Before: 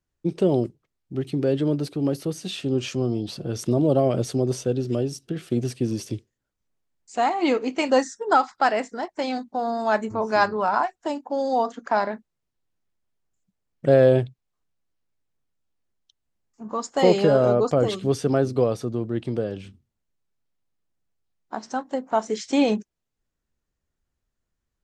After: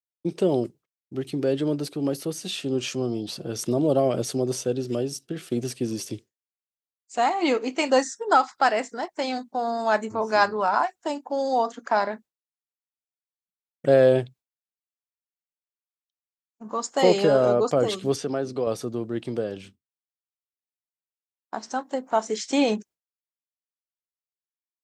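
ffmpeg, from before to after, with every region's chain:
-filter_complex "[0:a]asettb=1/sr,asplit=3[a][b][c];[a]atrim=end=18.164[d];[b]atrim=start=18.16:end=18.67,asetpts=PTS-STARTPTS,afade=t=in:d=0.004:c=qsin,afade=t=out:st=0.506:d=0.004:c=qsin,highpass=120,lowpass=6.6k,acompressor=threshold=-28dB:ratio=1.5:attack=3.2:release=140:knee=1:detection=peak[e];[c]atrim=start=18.666[f];[d][e]acrossfade=d=0.004:c1=hsin:c2=qsin[g];[g][f]acrossfade=d=0.004:c1=qsin:c2=hsin,highpass=f=230:p=1,agate=range=-33dB:threshold=-42dB:ratio=3:detection=peak,highshelf=f=6.1k:g=6.5"

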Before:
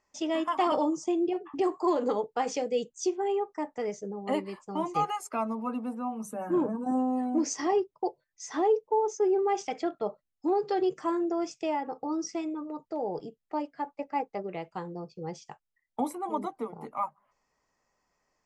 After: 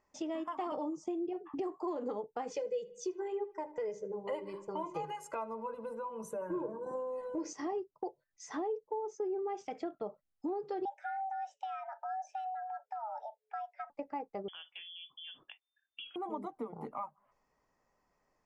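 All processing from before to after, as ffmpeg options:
-filter_complex "[0:a]asettb=1/sr,asplit=3[a][b][c];[a]atrim=end=2.504[d];[b]atrim=start=2.5:end=7.53,asetpts=PTS-STARTPTS,afade=t=in:d=0.004:c=qsin,afade=t=out:st=5.026:d=0.004:c=qsin,bandreject=f=50:t=h:w=6,bandreject=f=100:t=h:w=6,bandreject=f=150:t=h:w=6,bandreject=f=200:t=h:w=6,bandreject=f=250:t=h:w=6,bandreject=f=300:t=h:w=6,bandreject=f=350:t=h:w=6,bandreject=f=400:t=h:w=6,aecho=1:1:2:0.97,atrim=end_sample=221823,asplit=2[e][f];[f]adelay=76,lowpass=f=3.7k:p=1,volume=-18.5dB,asplit=2[g][h];[h]adelay=76,lowpass=f=3.7k:p=1,volume=0.48,asplit=2[i][j];[j]adelay=76,lowpass=f=3.7k:p=1,volume=0.48,asplit=2[k][l];[l]adelay=76,lowpass=f=3.7k:p=1,volume=0.48[m];[e][g][i][k][m]amix=inputs=5:normalize=0,atrim=end_sample=221823[n];[c]atrim=start=7.526[o];[d][n]acrossfade=d=0.004:c1=hsin:c2=qsin[p];[p][o]acrossfade=d=0.004:c1=qsin:c2=hsin,asettb=1/sr,asplit=3[q][r][s];[q]atrim=end=10.854[t];[r]atrim=start=10.85:end=13.9,asetpts=PTS-STARTPTS,afade=t=in:d=0.004:c=qsin,afade=t=out:st=3.046:d=0.004:c=qsin,highshelf=f=3.2k:g=-12,afreqshift=430,asuperstop=centerf=1100:order=4:qfactor=2.2[u];[s]atrim=start=13.896[v];[t][u]acrossfade=d=0.004:c1=hsin:c2=qsin[w];[w][v]acrossfade=d=0.004:c1=qsin:c2=hsin,asettb=1/sr,asplit=3[x][y][z];[x]atrim=end=14.484[aa];[y]atrim=start=14.48:end=16.16,asetpts=PTS-STARTPTS,afade=t=in:d=0.004:c=qsin,afade=t=out:st=1.676:d=0.004:c=qsin,lowpass=f=3.1k:t=q:w=0.5098,lowpass=f=3.1k:t=q:w=0.6013,lowpass=f=3.1k:t=q:w=0.9,lowpass=f=3.1k:t=q:w=2.563,afreqshift=-3600,acompressor=threshold=-41dB:ratio=2:attack=3.2:release=140:knee=1:detection=peak[ab];[z]atrim=start=16.156[ac];[aa][ab]acrossfade=d=0.004:c1=hsin:c2=qsin[ad];[ad][ac]acrossfade=d=0.004:c1=qsin:c2=hsin,acompressor=threshold=-39dB:ratio=3,highshelf=f=2.1k:g=-10,volume=1.5dB"

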